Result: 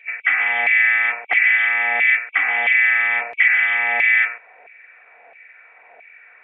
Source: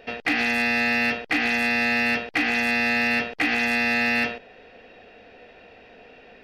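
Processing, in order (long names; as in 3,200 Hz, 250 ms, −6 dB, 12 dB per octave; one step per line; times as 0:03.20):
hearing-aid frequency compression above 2,200 Hz 4 to 1
hollow resonant body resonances 2,000/3,100 Hz, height 9 dB
auto-filter high-pass saw down 1.5 Hz 700–2,400 Hz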